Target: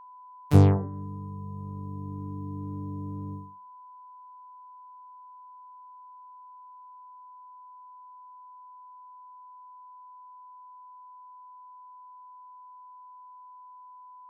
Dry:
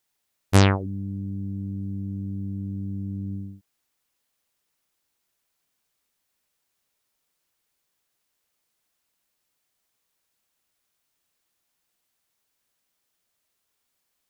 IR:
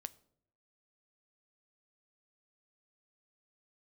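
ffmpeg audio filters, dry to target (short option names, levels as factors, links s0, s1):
-filter_complex "[0:a]asplit=2[s0][s1];[s1]asetrate=66075,aresample=44100,atempo=0.66742,volume=0.447[s2];[s0][s2]amix=inputs=2:normalize=0,bandreject=f=64.65:t=h:w=4,bandreject=f=129.3:t=h:w=4,bandreject=f=193.95:t=h:w=4,bandreject=f=258.6:t=h:w=4,bandreject=f=323.25:t=h:w=4,bandreject=f=387.9:t=h:w=4,bandreject=f=452.55:t=h:w=4,bandreject=f=517.2:t=h:w=4,bandreject=f=581.85:t=h:w=4,bandreject=f=646.5:t=h:w=4,bandreject=f=711.15:t=h:w=4,bandreject=f=775.8:t=h:w=4,bandreject=f=840.45:t=h:w=4,bandreject=f=905.1:t=h:w=4,bandreject=f=969.75:t=h:w=4,bandreject=f=1034.4:t=h:w=4,bandreject=f=1099.05:t=h:w=4,bandreject=f=1163.7:t=h:w=4,bandreject=f=1228.35:t=h:w=4,bandreject=f=1293:t=h:w=4,bandreject=f=1357.65:t=h:w=4,bandreject=f=1422.3:t=h:w=4,bandreject=f=1486.95:t=h:w=4,bandreject=f=1551.6:t=h:w=4,bandreject=f=1616.25:t=h:w=4,bandreject=f=1680.9:t=h:w=4,bandreject=f=1745.55:t=h:w=4,bandreject=f=1810.2:t=h:w=4,bandreject=f=1874.85:t=h:w=4,bandreject=f=1939.5:t=h:w=4,bandreject=f=2004.15:t=h:w=4,agate=range=0.0224:threshold=0.0562:ratio=3:detection=peak,acrossover=split=770[s3][s4];[s4]acompressor=threshold=0.0126:ratio=12[s5];[s3][s5]amix=inputs=2:normalize=0,aeval=exprs='val(0)+0.00501*sin(2*PI*1000*n/s)':c=same"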